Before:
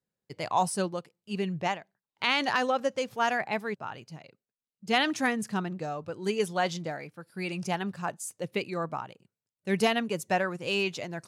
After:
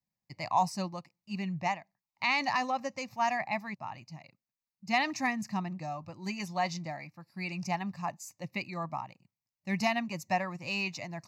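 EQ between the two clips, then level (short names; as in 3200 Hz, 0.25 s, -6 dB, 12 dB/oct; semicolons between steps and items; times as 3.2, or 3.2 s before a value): fixed phaser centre 2200 Hz, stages 8; 0.0 dB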